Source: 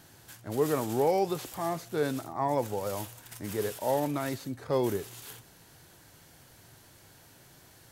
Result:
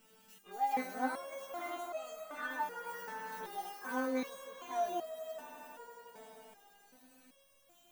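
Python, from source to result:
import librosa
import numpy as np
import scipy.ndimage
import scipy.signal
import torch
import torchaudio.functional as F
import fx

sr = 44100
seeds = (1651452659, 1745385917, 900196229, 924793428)

y = fx.pitch_heads(x, sr, semitones=10.0)
y = fx.echo_swell(y, sr, ms=88, loudest=5, wet_db=-15)
y = fx.resonator_held(y, sr, hz=2.6, low_hz=220.0, high_hz=640.0)
y = F.gain(torch.from_numpy(y), 6.0).numpy()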